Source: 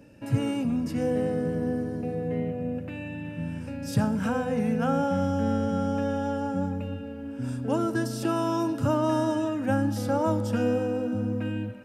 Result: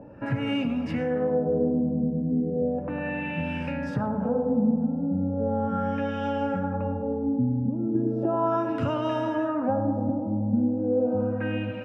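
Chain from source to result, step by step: treble shelf 7.1 kHz +10.5 dB; de-hum 54.79 Hz, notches 6; compression, threshold -31 dBFS, peak gain reduction 11.5 dB; LFO low-pass sine 0.36 Hz 210–2800 Hz; band-passed feedback delay 104 ms, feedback 82%, band-pass 690 Hz, level -7 dB; trim +6 dB

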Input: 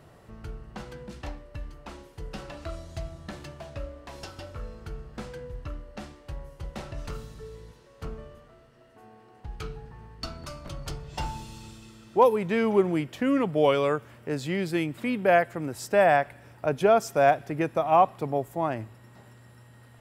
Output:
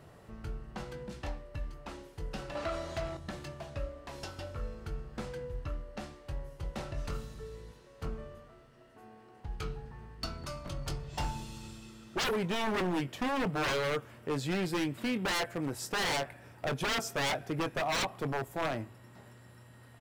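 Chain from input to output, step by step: 2.55–3.17 s: overdrive pedal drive 22 dB, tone 1.9 kHz, clips at -23 dBFS; doubling 22 ms -11 dB; wavefolder -24 dBFS; trim -2 dB

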